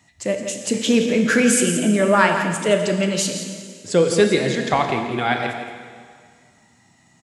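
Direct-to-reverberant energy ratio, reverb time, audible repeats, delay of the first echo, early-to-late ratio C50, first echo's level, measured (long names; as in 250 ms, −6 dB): 3.5 dB, 2.0 s, 1, 169 ms, 4.5 dB, −10.5 dB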